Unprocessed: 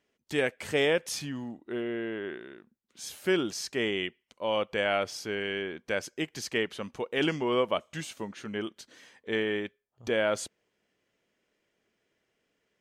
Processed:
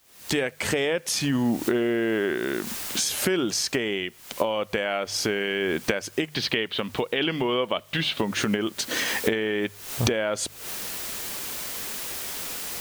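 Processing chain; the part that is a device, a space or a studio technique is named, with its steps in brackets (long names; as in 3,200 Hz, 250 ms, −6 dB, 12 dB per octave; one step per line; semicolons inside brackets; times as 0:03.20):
mains-hum notches 50/100/150 Hz
0:06.32–0:08.25: high shelf with overshoot 5,200 Hz −12.5 dB, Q 3
cheap recorder with automatic gain (white noise bed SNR 31 dB; camcorder AGC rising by 80 dB per second)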